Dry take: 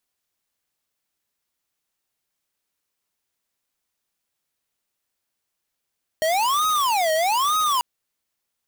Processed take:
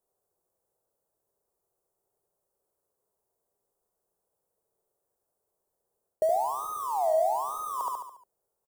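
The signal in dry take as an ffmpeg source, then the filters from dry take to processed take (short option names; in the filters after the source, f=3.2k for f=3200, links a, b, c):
-f lavfi -i "aevalsrc='0.0944*(2*lt(mod((944*t-316/(2*PI*1.1)*sin(2*PI*1.1*t)),1),0.5)-1)':d=1.59:s=44100"
-af "aecho=1:1:71|142|213|284|355|426:0.631|0.303|0.145|0.0698|0.0335|0.0161,areverse,acompressor=threshold=-28dB:ratio=10,areverse,firequalizer=gain_entry='entry(180,0);entry(270,-6);entry(400,12);entry(2400,-29);entry(4100,-18);entry(8300,-5)':delay=0.05:min_phase=1"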